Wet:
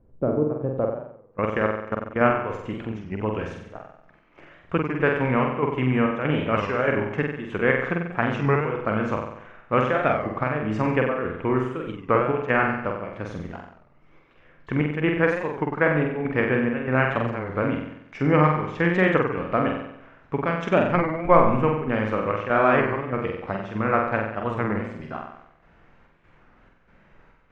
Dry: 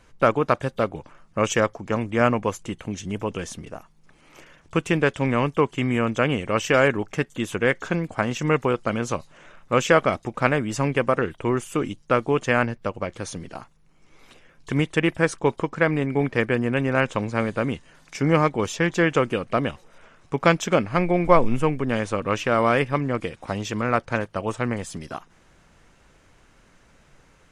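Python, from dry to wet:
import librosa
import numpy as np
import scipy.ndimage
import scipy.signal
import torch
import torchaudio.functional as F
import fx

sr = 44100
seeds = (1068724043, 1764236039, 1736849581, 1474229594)

p1 = fx.level_steps(x, sr, step_db=22, at=(0.8, 2.21))
p2 = fx.chopper(p1, sr, hz=1.6, depth_pct=60, duty_pct=70)
p3 = fx.filter_sweep_lowpass(p2, sr, from_hz=410.0, to_hz=2000.0, start_s=0.46, end_s=1.39, q=1.0)
p4 = p3 + fx.room_flutter(p3, sr, wall_m=8.0, rt60_s=0.77, dry=0)
p5 = fx.record_warp(p4, sr, rpm=33.33, depth_cents=160.0)
y = p5 * librosa.db_to_amplitude(-1.5)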